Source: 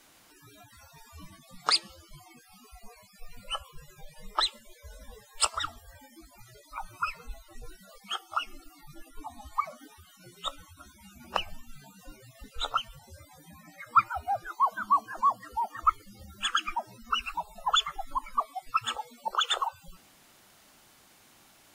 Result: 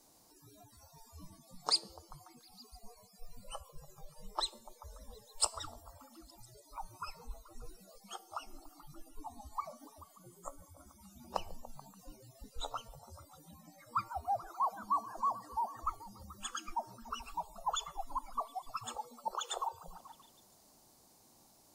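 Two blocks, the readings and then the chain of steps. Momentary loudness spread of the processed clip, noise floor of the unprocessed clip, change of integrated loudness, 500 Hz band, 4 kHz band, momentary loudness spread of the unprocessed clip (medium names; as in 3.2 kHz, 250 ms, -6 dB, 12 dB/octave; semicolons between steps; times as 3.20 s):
22 LU, -59 dBFS, -9.0 dB, -4.0 dB, -10.0 dB, 20 LU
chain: high-order bell 2.1 kHz -13.5 dB; feedback comb 230 Hz, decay 0.56 s, harmonics all, mix 40%; repeats whose band climbs or falls 144 ms, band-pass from 380 Hz, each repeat 0.7 oct, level -11 dB; spectral replace 10.09–10.92 s, 2–6.3 kHz both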